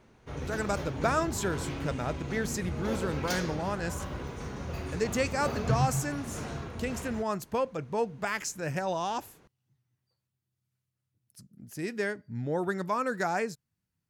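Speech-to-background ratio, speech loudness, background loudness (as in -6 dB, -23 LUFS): 3.5 dB, -32.5 LUFS, -36.0 LUFS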